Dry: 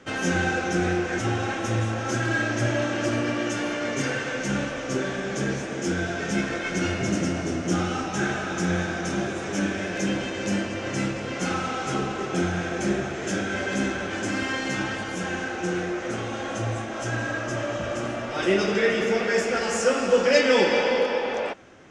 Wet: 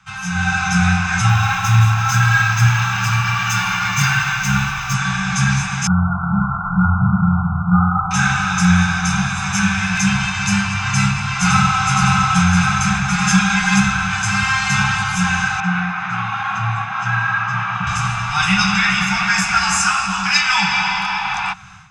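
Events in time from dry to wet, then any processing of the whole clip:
1.29–4.94 s: decimation joined by straight lines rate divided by 2×
5.87–8.11 s: brick-wall FIR low-pass 1.5 kHz
10.87–11.86 s: echo throw 560 ms, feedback 70%, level -2.5 dB
13.08–13.80 s: comb 4.9 ms, depth 98%
15.60–17.87 s: band-pass 180–2400 Hz
whole clip: Chebyshev band-stop 190–750 Hz, order 5; comb 0.8 ms, depth 49%; level rider gain up to 13.5 dB

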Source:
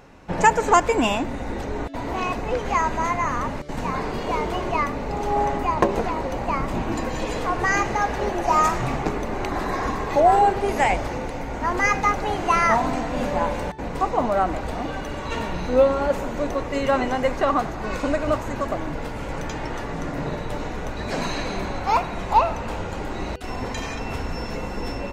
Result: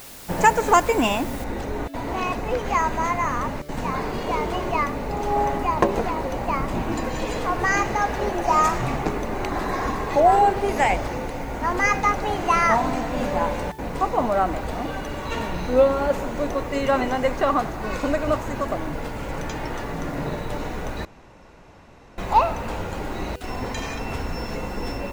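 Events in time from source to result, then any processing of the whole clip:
1.44 s: noise floor step -42 dB -55 dB
21.05–22.18 s: room tone

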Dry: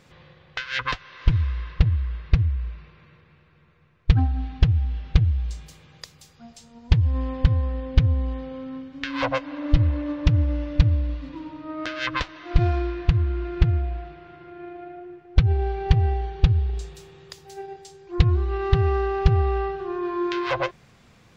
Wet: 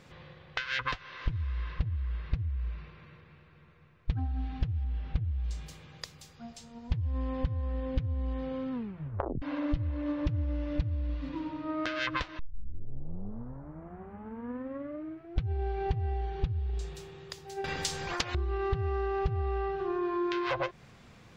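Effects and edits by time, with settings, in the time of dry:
4.83–5.43 s: treble shelf 3.6 kHz -> 5.2 kHz -8.5 dB
8.72 s: tape stop 0.70 s
12.39 s: tape start 3.03 s
17.64–18.35 s: spectrum-flattening compressor 10:1
whole clip: treble shelf 5.1 kHz -4 dB; compression 4:1, threshold -29 dBFS

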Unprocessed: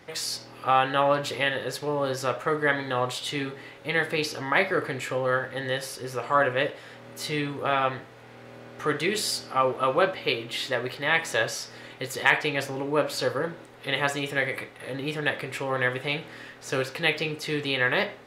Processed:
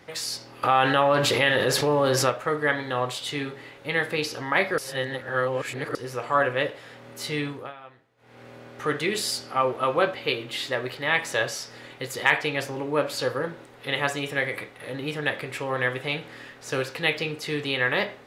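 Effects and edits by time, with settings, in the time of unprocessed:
0.63–2.30 s: level flattener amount 70%
4.78–5.95 s: reverse
7.48–8.42 s: dip -20.5 dB, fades 0.25 s

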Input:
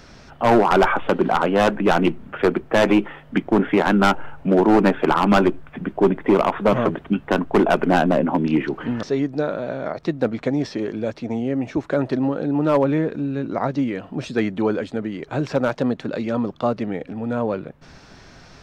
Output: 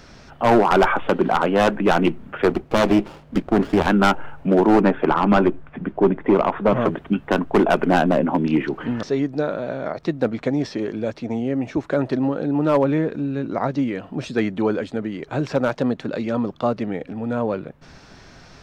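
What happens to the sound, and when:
2.49–3.87 s: sliding maximum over 17 samples
4.81–6.81 s: low-pass 2.2 kHz 6 dB/octave

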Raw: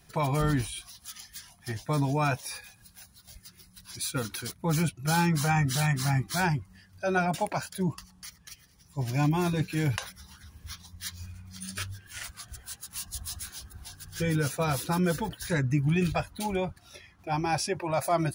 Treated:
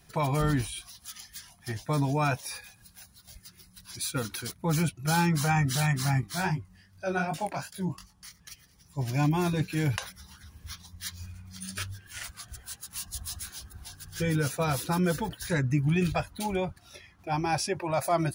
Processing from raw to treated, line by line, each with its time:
6.21–8.40 s: chorus 2.6 Hz, delay 18.5 ms, depth 4.6 ms

